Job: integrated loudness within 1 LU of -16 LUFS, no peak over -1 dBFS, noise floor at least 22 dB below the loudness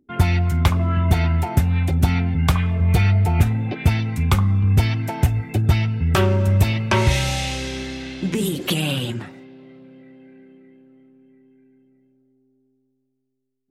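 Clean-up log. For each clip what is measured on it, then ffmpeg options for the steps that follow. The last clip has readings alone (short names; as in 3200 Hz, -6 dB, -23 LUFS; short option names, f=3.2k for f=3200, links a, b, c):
loudness -20.0 LUFS; peak -6.0 dBFS; loudness target -16.0 LUFS
-> -af "volume=4dB"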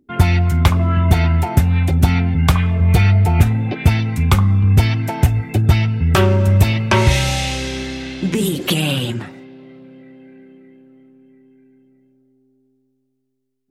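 loudness -16.0 LUFS; peak -2.0 dBFS; noise floor -66 dBFS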